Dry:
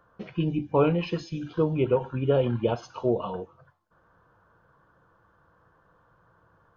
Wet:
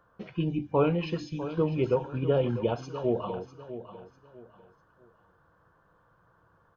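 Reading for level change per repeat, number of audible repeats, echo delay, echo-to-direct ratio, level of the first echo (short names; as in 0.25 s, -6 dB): -11.0 dB, 3, 0.649 s, -12.0 dB, -12.5 dB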